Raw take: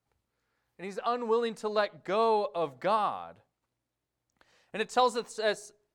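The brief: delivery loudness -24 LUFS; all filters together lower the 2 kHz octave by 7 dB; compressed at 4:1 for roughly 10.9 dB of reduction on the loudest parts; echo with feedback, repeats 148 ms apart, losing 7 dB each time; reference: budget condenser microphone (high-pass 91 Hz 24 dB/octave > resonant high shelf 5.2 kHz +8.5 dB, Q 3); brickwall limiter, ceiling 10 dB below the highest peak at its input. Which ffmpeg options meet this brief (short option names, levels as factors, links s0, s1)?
-af "equalizer=f=2000:t=o:g=-8.5,acompressor=threshold=0.02:ratio=4,alimiter=level_in=2.51:limit=0.0631:level=0:latency=1,volume=0.398,highpass=f=91:w=0.5412,highpass=f=91:w=1.3066,highshelf=f=5200:t=q:w=3:g=8.5,aecho=1:1:148|296|444|592|740:0.447|0.201|0.0905|0.0407|0.0183,volume=5.62"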